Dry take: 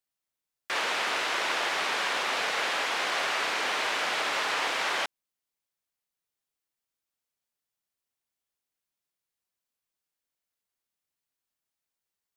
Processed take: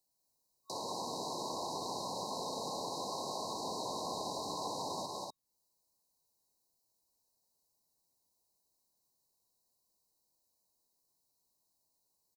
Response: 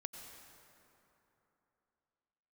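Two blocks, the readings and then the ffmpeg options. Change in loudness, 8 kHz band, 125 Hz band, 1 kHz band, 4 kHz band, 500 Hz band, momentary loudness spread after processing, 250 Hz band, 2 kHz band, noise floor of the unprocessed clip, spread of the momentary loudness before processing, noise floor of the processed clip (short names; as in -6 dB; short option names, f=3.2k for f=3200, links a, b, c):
-12.0 dB, -6.5 dB, n/a, -8.5 dB, -12.0 dB, -5.5 dB, 4 LU, 0.0 dB, under -40 dB, under -85 dBFS, 2 LU, -80 dBFS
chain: -filter_complex "[0:a]aecho=1:1:186.6|244.9:0.631|0.501,acrossover=split=210[a][b];[b]acompressor=threshold=-48dB:ratio=2.5[c];[a][c]amix=inputs=2:normalize=0,afftfilt=real='re*(1-between(b*sr/4096,1100,3800))':imag='im*(1-between(b*sr/4096,1100,3800))':win_size=4096:overlap=0.75,volume=6.5dB"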